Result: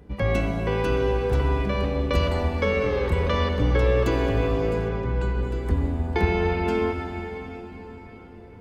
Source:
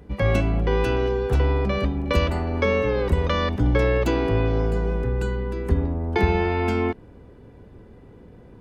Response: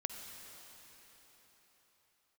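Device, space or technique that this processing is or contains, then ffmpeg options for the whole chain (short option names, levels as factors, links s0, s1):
cathedral: -filter_complex "[1:a]atrim=start_sample=2205[s0];[0:a][s0]afir=irnorm=-1:irlink=0,asplit=3[s1][s2][s3];[s1]afade=t=out:st=4.88:d=0.02[s4];[s2]lowpass=5600,afade=t=in:st=4.88:d=0.02,afade=t=out:st=5.41:d=0.02[s5];[s3]afade=t=in:st=5.41:d=0.02[s6];[s4][s5][s6]amix=inputs=3:normalize=0,volume=0.891"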